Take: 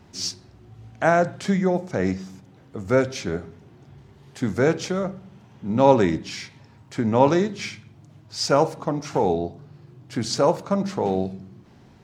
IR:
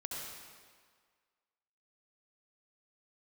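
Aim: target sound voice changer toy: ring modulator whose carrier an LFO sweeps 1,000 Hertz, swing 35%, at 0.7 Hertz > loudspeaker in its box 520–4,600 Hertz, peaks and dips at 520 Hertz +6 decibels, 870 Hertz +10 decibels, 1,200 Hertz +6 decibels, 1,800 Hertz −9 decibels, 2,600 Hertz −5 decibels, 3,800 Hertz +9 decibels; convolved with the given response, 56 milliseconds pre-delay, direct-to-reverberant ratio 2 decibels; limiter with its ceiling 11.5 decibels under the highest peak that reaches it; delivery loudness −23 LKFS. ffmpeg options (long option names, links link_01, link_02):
-filter_complex "[0:a]alimiter=limit=-12.5dB:level=0:latency=1,asplit=2[link_01][link_02];[1:a]atrim=start_sample=2205,adelay=56[link_03];[link_02][link_03]afir=irnorm=-1:irlink=0,volume=-2.5dB[link_04];[link_01][link_04]amix=inputs=2:normalize=0,aeval=exprs='val(0)*sin(2*PI*1000*n/s+1000*0.35/0.7*sin(2*PI*0.7*n/s))':channel_layout=same,highpass=520,equalizer=frequency=520:width_type=q:width=4:gain=6,equalizer=frequency=870:width_type=q:width=4:gain=10,equalizer=frequency=1200:width_type=q:width=4:gain=6,equalizer=frequency=1800:width_type=q:width=4:gain=-9,equalizer=frequency=2600:width_type=q:width=4:gain=-5,equalizer=frequency=3800:width_type=q:width=4:gain=9,lowpass=frequency=4600:width=0.5412,lowpass=frequency=4600:width=1.3066,volume=0.5dB"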